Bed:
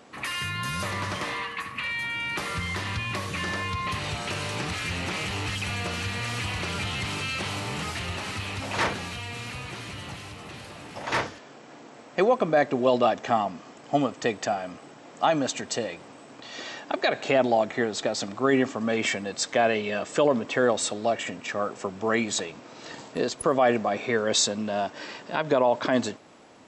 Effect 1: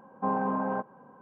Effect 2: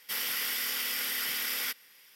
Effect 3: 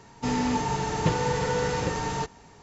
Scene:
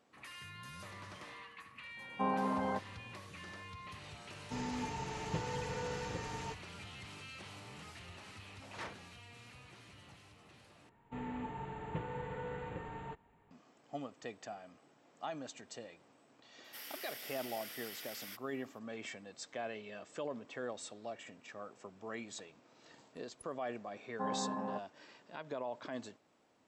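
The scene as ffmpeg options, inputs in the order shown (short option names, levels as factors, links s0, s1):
-filter_complex "[1:a]asplit=2[s0][s1];[3:a]asplit=2[s2][s3];[0:a]volume=0.106[s4];[s3]asuperstop=centerf=5500:order=4:qfactor=0.79[s5];[2:a]flanger=delay=1.5:depth=7.7:regen=-45:speed=1.2:shape=triangular[s6];[s1]afwtdn=0.0178[s7];[s4]asplit=2[s8][s9];[s8]atrim=end=10.894[s10];[s5]atrim=end=2.62,asetpts=PTS-STARTPTS,volume=0.158[s11];[s9]atrim=start=13.506[s12];[s0]atrim=end=1.21,asetpts=PTS-STARTPTS,volume=0.531,afade=t=in:d=0.004:c=hsin,afade=t=out:st=1.206:d=0.004:c=hsin,adelay=1970[s13];[s2]atrim=end=2.62,asetpts=PTS-STARTPTS,volume=0.2,afade=t=in:d=0.004:c=hsin,afade=t=out:st=2.616:d=0.004:c=hsin,adelay=4280[s14];[s6]atrim=end=2.15,asetpts=PTS-STARTPTS,volume=0.251,afade=t=in:d=0.004:c=hsin,afade=t=out:st=2.146:d=0.004:c=hsin,adelay=16640[s15];[s7]atrim=end=1.21,asetpts=PTS-STARTPTS,volume=0.335,afade=t=in:d=0.004:c=hsin,afade=t=out:st=1.206:d=0.004:c=hsin,adelay=23970[s16];[s10][s11]acrossfade=d=0.004:c1=hsin:c2=hsin[s17];[s17][s12]acrossfade=d=0.004:c1=hsin:c2=hsin[s18];[s18][s13][s14][s15][s16]amix=inputs=5:normalize=0"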